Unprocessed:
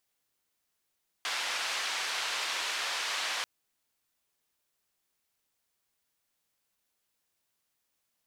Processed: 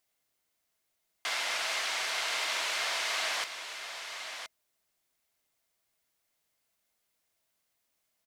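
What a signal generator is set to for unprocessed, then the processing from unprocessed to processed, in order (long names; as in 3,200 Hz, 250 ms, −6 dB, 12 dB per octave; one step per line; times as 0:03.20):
band-limited noise 800–4,100 Hz, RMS −33.5 dBFS 2.19 s
hollow resonant body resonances 650/2,100 Hz, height 8 dB
on a send: single-tap delay 1,021 ms −8.5 dB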